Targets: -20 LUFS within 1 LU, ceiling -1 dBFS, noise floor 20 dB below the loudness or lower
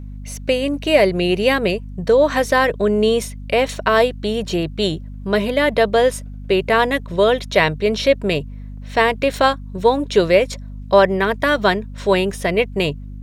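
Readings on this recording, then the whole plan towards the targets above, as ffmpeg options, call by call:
hum 50 Hz; highest harmonic 250 Hz; hum level -30 dBFS; loudness -18.0 LUFS; peak level -1.0 dBFS; loudness target -20.0 LUFS
-> -af "bandreject=f=50:t=h:w=6,bandreject=f=100:t=h:w=6,bandreject=f=150:t=h:w=6,bandreject=f=200:t=h:w=6,bandreject=f=250:t=h:w=6"
-af "volume=0.794"

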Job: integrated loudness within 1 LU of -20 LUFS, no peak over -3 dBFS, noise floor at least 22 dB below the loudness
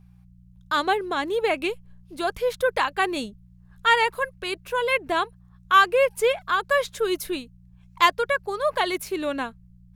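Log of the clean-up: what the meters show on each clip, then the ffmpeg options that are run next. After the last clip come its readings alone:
hum 60 Hz; highest harmonic 180 Hz; hum level -49 dBFS; loudness -24.0 LUFS; peak level -3.0 dBFS; loudness target -20.0 LUFS
-> -af "bandreject=f=60:t=h:w=4,bandreject=f=120:t=h:w=4,bandreject=f=180:t=h:w=4"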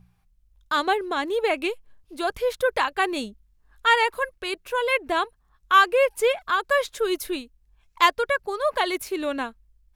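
hum not found; loudness -24.0 LUFS; peak level -3.0 dBFS; loudness target -20.0 LUFS
-> -af "volume=1.58,alimiter=limit=0.708:level=0:latency=1"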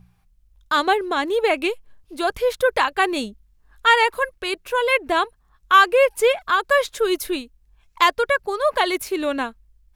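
loudness -20.0 LUFS; peak level -3.0 dBFS; noise floor -60 dBFS

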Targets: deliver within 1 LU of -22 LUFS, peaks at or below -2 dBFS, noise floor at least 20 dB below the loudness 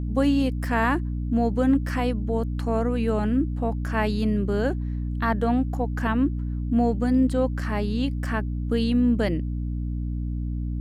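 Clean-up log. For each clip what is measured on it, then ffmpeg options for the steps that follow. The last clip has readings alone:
hum 60 Hz; highest harmonic 300 Hz; hum level -25 dBFS; loudness -25.0 LUFS; peak level -10.0 dBFS; loudness target -22.0 LUFS
-> -af "bandreject=f=60:t=h:w=6,bandreject=f=120:t=h:w=6,bandreject=f=180:t=h:w=6,bandreject=f=240:t=h:w=6,bandreject=f=300:t=h:w=6"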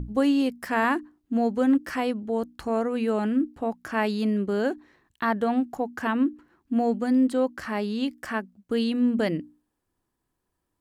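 hum not found; loudness -26.0 LUFS; peak level -11.5 dBFS; loudness target -22.0 LUFS
-> -af "volume=1.58"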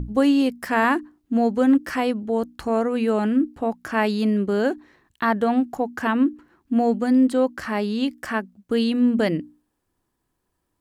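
loudness -22.0 LUFS; peak level -7.5 dBFS; noise floor -76 dBFS

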